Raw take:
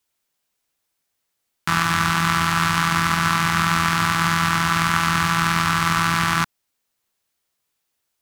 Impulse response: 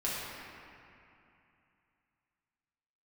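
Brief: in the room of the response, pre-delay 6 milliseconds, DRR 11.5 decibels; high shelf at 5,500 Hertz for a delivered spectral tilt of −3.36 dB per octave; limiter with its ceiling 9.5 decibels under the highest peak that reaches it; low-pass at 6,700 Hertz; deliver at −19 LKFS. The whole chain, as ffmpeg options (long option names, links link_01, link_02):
-filter_complex "[0:a]lowpass=6700,highshelf=frequency=5500:gain=5,alimiter=limit=-11dB:level=0:latency=1,asplit=2[link_01][link_02];[1:a]atrim=start_sample=2205,adelay=6[link_03];[link_02][link_03]afir=irnorm=-1:irlink=0,volume=-18.5dB[link_04];[link_01][link_04]amix=inputs=2:normalize=0,volume=5.5dB"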